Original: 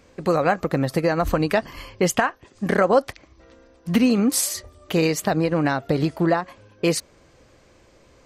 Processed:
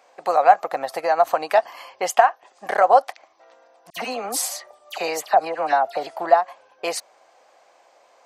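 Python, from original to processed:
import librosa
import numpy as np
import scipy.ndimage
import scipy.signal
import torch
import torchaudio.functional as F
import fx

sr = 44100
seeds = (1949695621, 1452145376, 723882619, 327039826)

y = fx.highpass_res(x, sr, hz=740.0, q=4.8)
y = fx.dispersion(y, sr, late='lows', ms=67.0, hz=2000.0, at=(3.9, 6.07))
y = y * 10.0 ** (-2.5 / 20.0)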